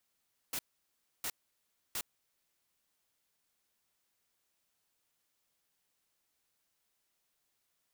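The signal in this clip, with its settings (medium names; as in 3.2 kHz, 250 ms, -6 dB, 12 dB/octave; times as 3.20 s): noise bursts white, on 0.06 s, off 0.65 s, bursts 3, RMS -37 dBFS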